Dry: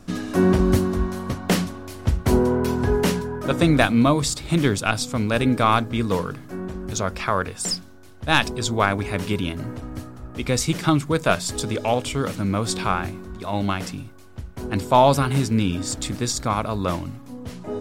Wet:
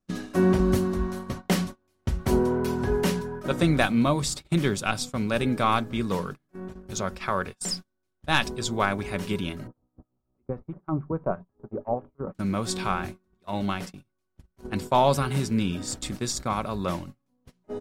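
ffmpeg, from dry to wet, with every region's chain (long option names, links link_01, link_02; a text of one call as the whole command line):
ffmpeg -i in.wav -filter_complex "[0:a]asettb=1/sr,asplit=3[link_01][link_02][link_03];[link_01]atrim=end=9.674[link_04];[link_02]atrim=start=9.67:end=12.35,asetpts=PTS-STARTPTS,afade=type=in:duration=0.004:curve=qsin,afade=type=out:start_time=2.676:duration=0.004:curve=qsin,bandreject=frequency=50:width_type=h:width=6,bandreject=frequency=100:width_type=h:width=6,bandreject=frequency=150:width_type=h:width=6,bandreject=frequency=200:width_type=h:width=6,acrossover=split=1200[link_05][link_06];[link_05]aeval=exprs='val(0)*(1-0.7/2+0.7/2*cos(2*PI*6.2*n/s))':channel_layout=same[link_07];[link_06]aeval=exprs='val(0)*(1-0.7/2-0.7/2*cos(2*PI*6.2*n/s))':channel_layout=same[link_08];[link_07][link_08]amix=inputs=2:normalize=0,lowpass=frequency=1100:width=0.5412,lowpass=frequency=1100:width=1.3066[link_09];[link_03]atrim=start=12.346[link_10];[link_04][link_09]acrossfade=duration=0.004:curve1=hsin:curve2=qsin[link_11];[link_11][link_10]acrossfade=duration=0.004:curve1=qsin:curve2=hsin,agate=range=-30dB:threshold=-29dB:ratio=16:detection=peak,aecho=1:1:5.3:0.32,volume=-5dB" out.wav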